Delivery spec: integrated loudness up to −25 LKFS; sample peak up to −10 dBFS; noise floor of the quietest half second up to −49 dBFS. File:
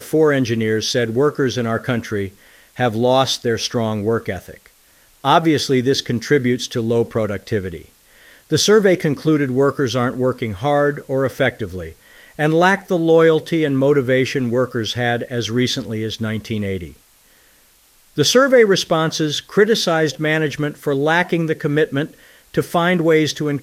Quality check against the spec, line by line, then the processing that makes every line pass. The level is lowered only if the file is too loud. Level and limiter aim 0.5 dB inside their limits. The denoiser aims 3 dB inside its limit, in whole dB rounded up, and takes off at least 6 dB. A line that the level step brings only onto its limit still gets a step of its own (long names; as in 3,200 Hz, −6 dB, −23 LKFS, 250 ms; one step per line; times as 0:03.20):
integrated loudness −17.5 LKFS: out of spec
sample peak −1.5 dBFS: out of spec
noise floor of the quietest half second −53 dBFS: in spec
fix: level −8 dB
brickwall limiter −10.5 dBFS